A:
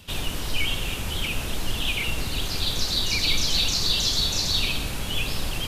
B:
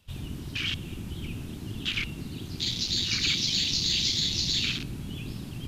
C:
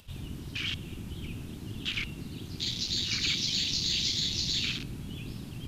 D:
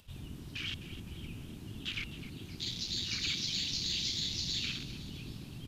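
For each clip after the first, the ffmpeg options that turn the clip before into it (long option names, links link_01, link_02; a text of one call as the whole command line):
ffmpeg -i in.wav -af "afwtdn=0.0398,afftfilt=real='re*lt(hypot(re,im),0.282)':imag='im*lt(hypot(re,im),0.282)':win_size=1024:overlap=0.75" out.wav
ffmpeg -i in.wav -af "acompressor=mode=upward:threshold=-46dB:ratio=2.5,volume=-3dB" out.wav
ffmpeg -i in.wav -af "aecho=1:1:257|514|771|1028|1285:0.2|0.106|0.056|0.0297|0.0157,volume=-5.5dB" out.wav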